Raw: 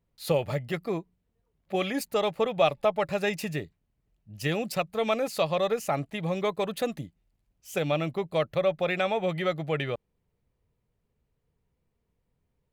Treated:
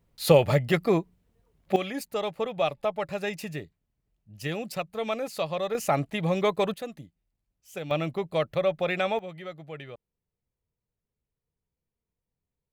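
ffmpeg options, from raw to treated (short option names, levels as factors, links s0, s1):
-af "asetnsamples=n=441:p=0,asendcmd='1.76 volume volume -3.5dB;5.75 volume volume 3.5dB;6.74 volume volume -7.5dB;7.91 volume volume 0dB;9.19 volume volume -11.5dB',volume=2.37"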